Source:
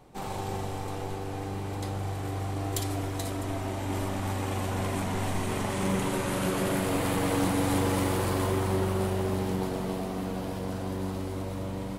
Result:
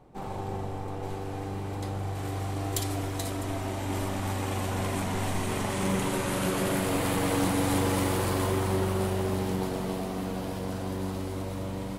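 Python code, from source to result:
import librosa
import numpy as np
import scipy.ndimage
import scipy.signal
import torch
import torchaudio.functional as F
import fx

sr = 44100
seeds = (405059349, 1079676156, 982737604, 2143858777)

y = fx.high_shelf(x, sr, hz=2100.0, db=fx.steps((0.0, -10.5), (1.02, -3.0), (2.15, 2.0)))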